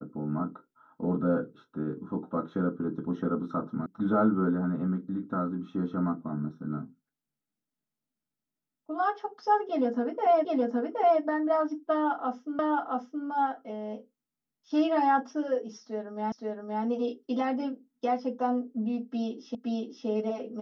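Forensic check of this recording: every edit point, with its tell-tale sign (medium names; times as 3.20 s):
3.86 s: sound stops dead
10.45 s: repeat of the last 0.77 s
12.59 s: repeat of the last 0.67 s
16.32 s: repeat of the last 0.52 s
19.55 s: repeat of the last 0.52 s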